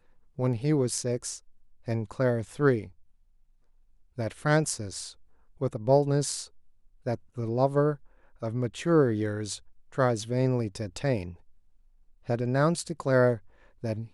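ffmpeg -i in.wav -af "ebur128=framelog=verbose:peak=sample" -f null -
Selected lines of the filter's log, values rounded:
Integrated loudness:
  I:         -28.3 LUFS
  Threshold: -38.9 LUFS
Loudness range:
  LRA:         3.0 LU
  Threshold: -49.6 LUFS
  LRA low:   -31.4 LUFS
  LRA high:  -28.4 LUFS
Sample peak:
  Peak:      -10.3 dBFS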